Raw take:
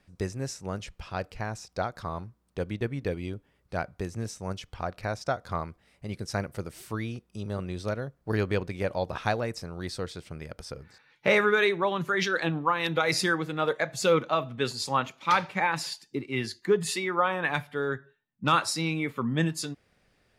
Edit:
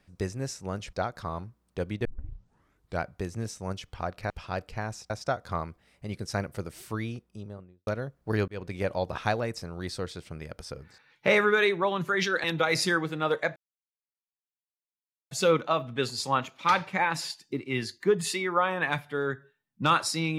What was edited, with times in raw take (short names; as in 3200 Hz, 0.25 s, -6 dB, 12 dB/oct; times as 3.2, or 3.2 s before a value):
0.93–1.73 move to 5.1
2.85 tape start 0.95 s
7.03–7.87 studio fade out
8.48–8.74 fade in
12.44–12.81 cut
13.93 insert silence 1.75 s